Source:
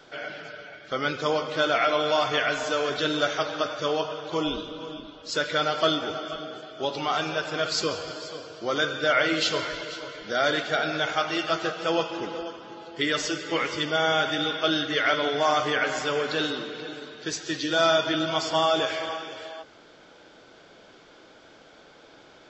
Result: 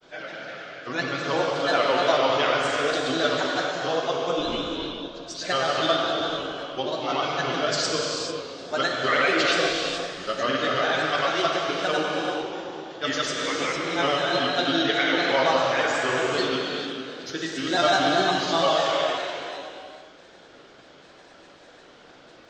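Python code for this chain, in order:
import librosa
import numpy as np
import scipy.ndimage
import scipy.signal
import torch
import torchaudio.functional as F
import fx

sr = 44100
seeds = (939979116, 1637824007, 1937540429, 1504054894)

y = fx.granulator(x, sr, seeds[0], grain_ms=100.0, per_s=20.0, spray_ms=100.0, spread_st=3)
y = fx.rev_gated(y, sr, seeds[1], gate_ms=470, shape='flat', drr_db=-0.5)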